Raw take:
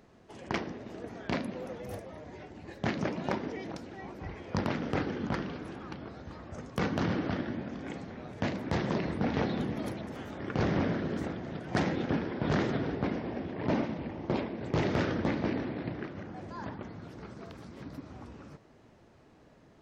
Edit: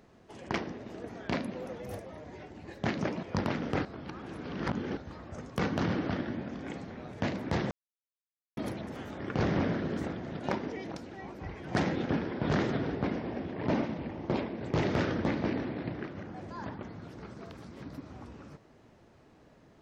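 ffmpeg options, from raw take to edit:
-filter_complex "[0:a]asplit=8[a][b][c][d][e][f][g][h];[a]atrim=end=3.232[i];[b]atrim=start=4.428:end=5.052[j];[c]atrim=start=5.048:end=6.172,asetpts=PTS-STARTPTS,areverse[k];[d]atrim=start=6.168:end=8.91,asetpts=PTS-STARTPTS,afade=t=out:st=2.738:d=0.004:c=hsin[l];[e]atrim=start=8.91:end=9.77,asetpts=PTS-STARTPTS,volume=0[m];[f]atrim=start=9.77:end=11.632,asetpts=PTS-STARTPTS,afade=t=in:d=0.004:c=hsin[n];[g]atrim=start=3.228:end=4.432[o];[h]atrim=start=11.628[p];[i][j]acrossfade=d=0.004:c1=hsin:c2=hsin[q];[q][k]acrossfade=d=0.004:c1=hsin:c2=hsin[r];[l][m][n]concat=n=3:v=0:a=1[s];[r][s]acrossfade=d=0.004:c1=hsin:c2=hsin[t];[t][o]acrossfade=d=0.004:c1=hsin:c2=hsin[u];[u][p]acrossfade=d=0.004:c1=hsin:c2=hsin"

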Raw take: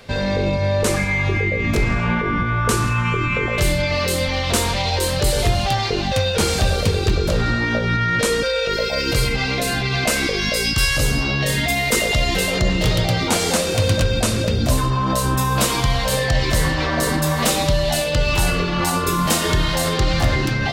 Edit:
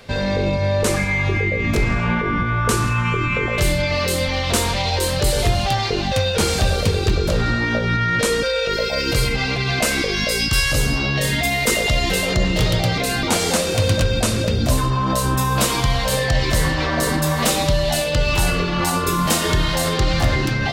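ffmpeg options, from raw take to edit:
-filter_complex "[0:a]asplit=4[a][b][c][d];[a]atrim=end=9.562[e];[b]atrim=start=9.808:end=13.232[f];[c]atrim=start=9.558:end=9.812[g];[d]atrim=start=13.228[h];[e][f]acrossfade=d=0.004:c1=hsin:c2=hsin[i];[i][g]acrossfade=d=0.004:c1=hsin:c2=hsin[j];[j][h]acrossfade=d=0.004:c1=hsin:c2=hsin"

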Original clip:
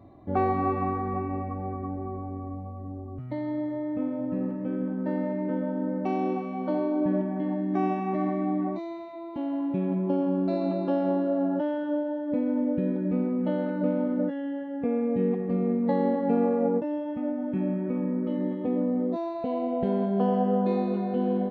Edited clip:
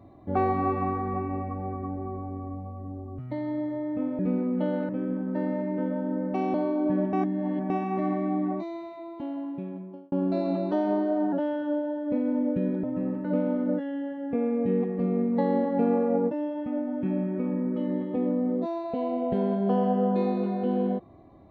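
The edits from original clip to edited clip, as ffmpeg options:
-filter_complex "[0:a]asplit=11[a][b][c][d][e][f][g][h][i][j][k];[a]atrim=end=4.192[l];[b]atrim=start=13.048:end=13.752[m];[c]atrim=start=4.598:end=6.252[n];[d]atrim=start=6.698:end=7.292[o];[e]atrim=start=7.288:end=7.862,asetpts=PTS-STARTPTS,areverse[p];[f]atrim=start=7.858:end=10.28,asetpts=PTS-STARTPTS,afade=t=out:st=1.232:d=1.19[q];[g]atrim=start=10.28:end=10.874,asetpts=PTS-STARTPTS,afade=t=in:d=0.004:c=hsin[r];[h]atrim=start=10.87:end=11.54,asetpts=PTS-STARTPTS,asetrate=48069,aresample=44100,atrim=end_sample=27107,asetpts=PTS-STARTPTS[s];[i]atrim=start=11.536:end=13.052[t];[j]atrim=start=4.188:end=4.602[u];[k]atrim=start=13.748[v];[l][m]acrossfade=d=0.004:c1=hsin:c2=hsin[w];[w][n]acrossfade=d=0.004:c1=hsin:c2=hsin[x];[x][o]acrossfade=d=0.004:c1=hsin:c2=hsin[y];[y][p]acrossfade=d=0.004:c1=hsin:c2=hsin[z];[q][r]concat=n=2:v=0:a=1[aa];[z][aa]acrossfade=d=0.004:c1=hsin:c2=hsin[ab];[ab][s]acrossfade=d=0.004:c1=hsin:c2=hsin[ac];[ac][t]acrossfade=d=0.004:c1=hsin:c2=hsin[ad];[ad][u]acrossfade=d=0.004:c1=hsin:c2=hsin[ae];[ae][v]acrossfade=d=0.004:c1=hsin:c2=hsin"

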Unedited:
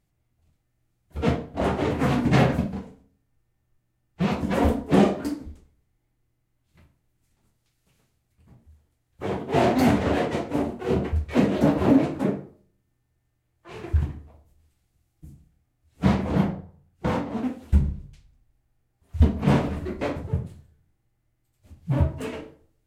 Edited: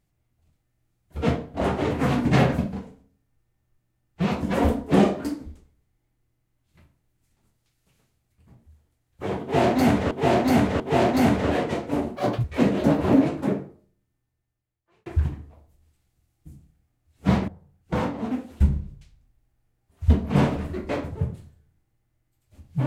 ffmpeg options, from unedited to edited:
-filter_complex "[0:a]asplit=7[a][b][c][d][e][f][g];[a]atrim=end=10.112[h];[b]atrim=start=9.418:end=10.112[i];[c]atrim=start=9.418:end=10.784[j];[d]atrim=start=10.78:end=11.21,asetpts=PTS-STARTPTS,asetrate=67914,aresample=44100[k];[e]atrim=start=11.206:end=13.83,asetpts=PTS-STARTPTS,afade=t=out:st=1.124:d=1.5[l];[f]atrim=start=13.83:end=16.252,asetpts=PTS-STARTPTS,afade=t=in:d=0.004:c=hsin[m];[g]atrim=start=16.598[n];[h][i]acrossfade=d=0.004:c1=hsin:c2=hsin[o];[o][j]acrossfade=d=0.004:c1=hsin:c2=hsin[p];[p][k]acrossfade=d=0.004:c1=hsin:c2=hsin[q];[l][m]concat=n=2:v=0:a=1[r];[q][r]acrossfade=d=0.004:c1=hsin:c2=hsin[s];[s][n]acrossfade=d=0.004:c1=hsin:c2=hsin"

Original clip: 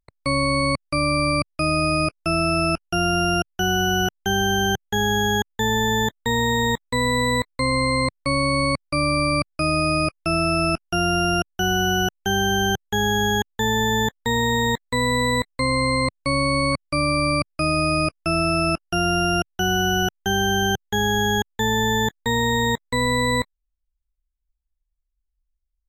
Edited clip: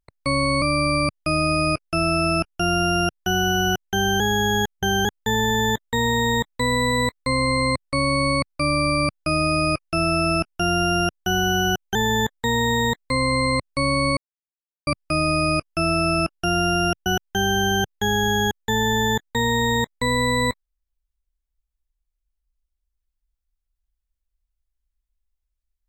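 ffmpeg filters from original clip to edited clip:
-filter_complex "[0:a]asplit=9[a][b][c][d][e][f][g][h][i];[a]atrim=end=0.622[j];[b]atrim=start=0.948:end=4.532[k];[c]atrim=start=4.528:end=5.382,asetpts=PTS-STARTPTS,areverse[l];[d]atrim=start=5.378:end=12.282[m];[e]atrim=start=13.768:end=14.882[n];[f]atrim=start=15.548:end=16.66,asetpts=PTS-STARTPTS,afade=t=out:st=1.108:d=0.004:c=hsin[o];[g]atrim=start=16.66:end=17.36,asetpts=PTS-STARTPTS,volume=0[p];[h]atrim=start=17.36:end=19.552,asetpts=PTS-STARTPTS,afade=t=in:d=0.004:c=hsin[q];[i]atrim=start=19.968[r];[j][k]acrossfade=d=0.004:c1=hsin:c2=hsin[s];[s][l]acrossfade=d=0.004:c1=hsin:c2=hsin[t];[t][m]acrossfade=d=0.004:c1=hsin:c2=hsin[u];[u][n]acrossfade=d=0.004:c1=hsin:c2=hsin[v];[o][p][q]concat=n=3:v=0:a=1[w];[v][w]acrossfade=d=0.004:c1=hsin:c2=hsin[x];[x][r]acrossfade=d=0.004:c1=hsin:c2=hsin"

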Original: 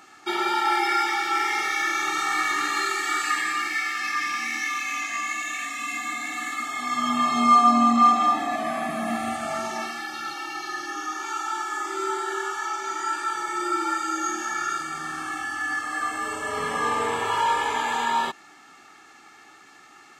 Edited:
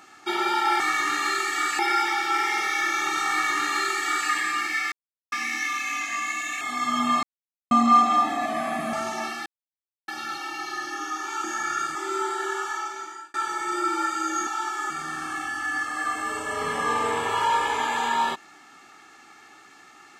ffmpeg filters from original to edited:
-filter_complex "[0:a]asplit=15[a][b][c][d][e][f][g][h][i][j][k][l][m][n][o];[a]atrim=end=0.802[p];[b]atrim=start=2.308:end=3.302[q];[c]atrim=start=0.798:end=3.93,asetpts=PTS-STARTPTS,afade=t=out:st=3.128:d=0.004:c=hsin[r];[d]atrim=start=3.93:end=4.33,asetpts=PTS-STARTPTS,volume=0[s];[e]atrim=start=4.33:end=5.622,asetpts=PTS-STARTPTS,afade=t=in:d=0.004:c=hsin[t];[f]atrim=start=6.708:end=7.33,asetpts=PTS-STARTPTS,afade=t=out:st=0.618:d=0.004:c=hsin[u];[g]atrim=start=7.33:end=7.81,asetpts=PTS-STARTPTS,volume=0[v];[h]atrim=start=7.81:end=9.032,asetpts=PTS-STARTPTS,afade=t=in:d=0.004:c=hsin[w];[i]atrim=start=9.508:end=10.04,asetpts=PTS-STARTPTS,afade=t=out:st=0.528:d=0.004:c=hsin,apad=pad_dur=0.62[x];[j]atrim=start=10.04:end=11.402,asetpts=PTS-STARTPTS,afade=t=in:d=0.004:c=hsin[y];[k]atrim=start=14.348:end=14.862[z];[l]atrim=start=11.828:end=13.22,asetpts=PTS-STARTPTS,afade=t=out:st=0.752:d=0.64[aa];[m]atrim=start=13.22:end=14.352,asetpts=PTS-STARTPTS,afade=t=in:d=0.004:c=hsin[ab];[n]atrim=start=11.398:end=11.832[ac];[o]atrim=start=14.858[ad];[p][q]acrossfade=d=0.004:c1=hsin:c2=hsin[ae];[r][s][t]concat=n=3:v=0:a=1[af];[ae][af]acrossfade=d=0.004:c1=hsin:c2=hsin[ag];[u][v][w]concat=n=3:v=0:a=1[ah];[ag][ah]acrossfade=d=0.004:c1=hsin:c2=hsin[ai];[x][y]concat=n=2:v=0:a=1[aj];[ai][aj]acrossfade=d=0.004:c1=hsin:c2=hsin[ak];[ak][z]acrossfade=d=0.004:c1=hsin:c2=hsin[al];[aa][ab]concat=n=2:v=0:a=1[am];[al][am]acrossfade=d=0.004:c1=hsin:c2=hsin[an];[an][ac]acrossfade=d=0.004:c1=hsin:c2=hsin[ao];[ao][ad]acrossfade=d=0.004:c1=hsin:c2=hsin"

